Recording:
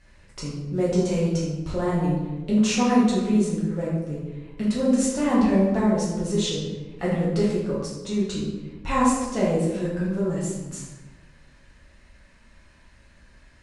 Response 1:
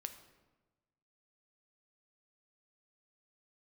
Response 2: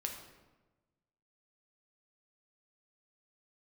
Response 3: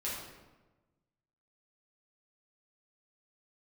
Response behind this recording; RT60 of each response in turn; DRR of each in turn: 3; 1.2 s, 1.2 s, 1.2 s; 7.5 dB, 2.0 dB, -7.5 dB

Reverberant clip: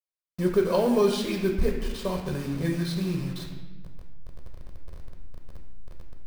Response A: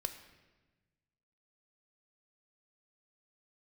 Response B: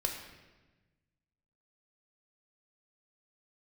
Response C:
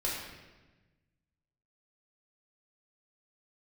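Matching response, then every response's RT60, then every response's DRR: B; 1.2 s, 1.2 s, 1.2 s; 7.0 dB, 1.5 dB, -6.0 dB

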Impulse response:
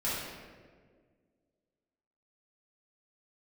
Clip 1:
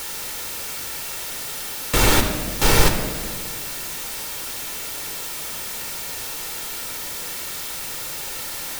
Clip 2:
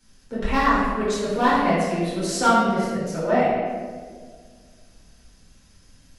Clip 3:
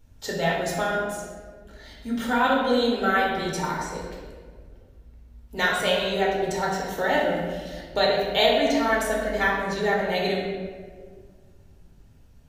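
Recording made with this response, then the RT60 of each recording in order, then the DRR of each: 2; 1.7 s, 1.7 s, 1.7 s; 4.5 dB, -10.5 dB, -4.0 dB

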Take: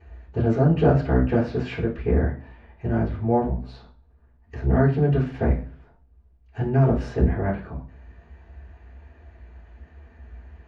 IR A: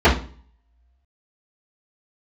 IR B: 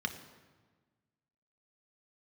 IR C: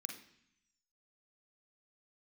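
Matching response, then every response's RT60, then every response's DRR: A; 0.40 s, 1.4 s, 0.70 s; -13.5 dB, 5.5 dB, 2.5 dB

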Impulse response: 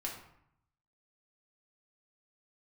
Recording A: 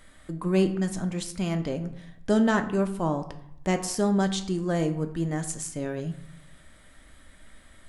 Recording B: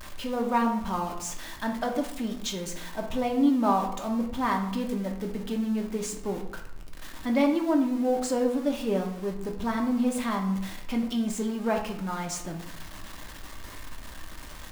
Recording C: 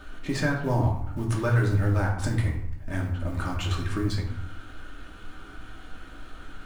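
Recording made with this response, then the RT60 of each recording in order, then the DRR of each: C; 0.70 s, 0.70 s, 0.70 s; 6.5 dB, 1.5 dB, -3.0 dB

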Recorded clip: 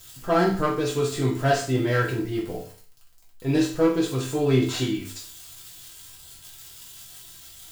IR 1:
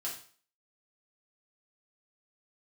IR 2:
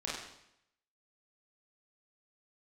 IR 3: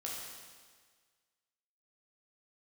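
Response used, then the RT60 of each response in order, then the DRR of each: 1; 0.45 s, 0.75 s, 1.6 s; -6.0 dB, -6.5 dB, -4.5 dB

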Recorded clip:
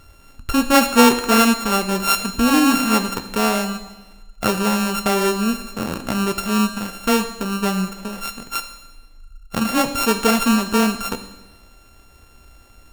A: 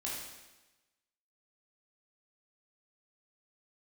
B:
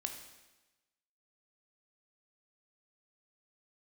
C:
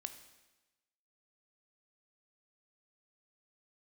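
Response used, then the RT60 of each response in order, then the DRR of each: C; 1.1 s, 1.1 s, 1.1 s; -5.5 dB, 4.0 dB, 8.5 dB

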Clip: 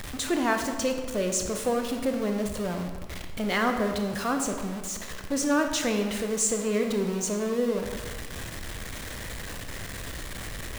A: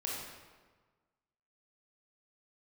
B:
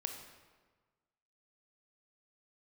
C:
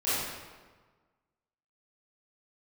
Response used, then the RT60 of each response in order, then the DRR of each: B; 1.4 s, 1.4 s, 1.4 s; -4.0 dB, 4.5 dB, -14.0 dB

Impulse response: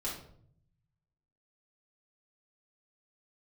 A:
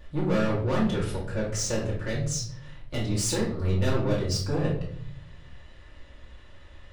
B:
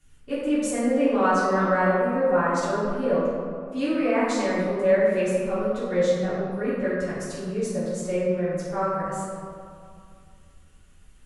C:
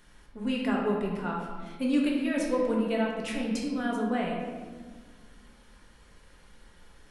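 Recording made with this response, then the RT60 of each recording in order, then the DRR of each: A; 0.60 s, 2.4 s, 1.6 s; -7.5 dB, -11.5 dB, -3.0 dB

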